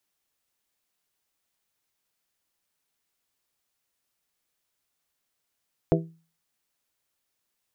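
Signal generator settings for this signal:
struck glass bell, lowest mode 164 Hz, modes 5, decay 0.38 s, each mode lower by 0.5 dB, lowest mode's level −18.5 dB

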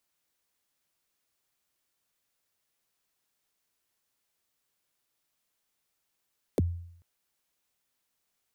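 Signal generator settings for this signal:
synth kick length 0.44 s, from 590 Hz, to 86 Hz, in 25 ms, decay 0.68 s, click on, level −19.5 dB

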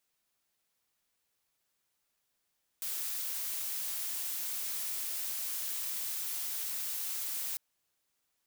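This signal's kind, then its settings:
noise blue, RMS −36.5 dBFS 4.75 s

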